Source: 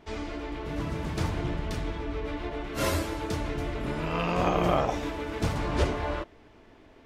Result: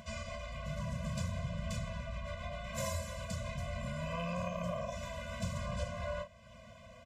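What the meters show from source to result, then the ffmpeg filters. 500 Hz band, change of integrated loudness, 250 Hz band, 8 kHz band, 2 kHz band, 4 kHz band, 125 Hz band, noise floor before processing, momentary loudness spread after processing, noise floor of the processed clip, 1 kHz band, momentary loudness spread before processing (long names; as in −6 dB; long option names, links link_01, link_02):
−10.0 dB, −9.5 dB, −11.5 dB, −4.0 dB, −8.5 dB, −8.5 dB, −6.5 dB, −55 dBFS, 5 LU, −56 dBFS, −12.0 dB, 9 LU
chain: -filter_complex "[0:a]highpass=60,bandreject=frequency=1700:width=7,asplit=2[link_01][link_02];[link_02]adelay=34,volume=-10dB[link_03];[link_01][link_03]amix=inputs=2:normalize=0,aresample=32000,aresample=44100,acompressor=threshold=-32dB:ratio=6,equalizer=frequency=7200:width=3.2:gain=10,acompressor=mode=upward:threshold=-42dB:ratio=2.5,afftfilt=real='re*eq(mod(floor(b*sr/1024/240),2),0)':imag='im*eq(mod(floor(b*sr/1024/240),2),0)':win_size=1024:overlap=0.75"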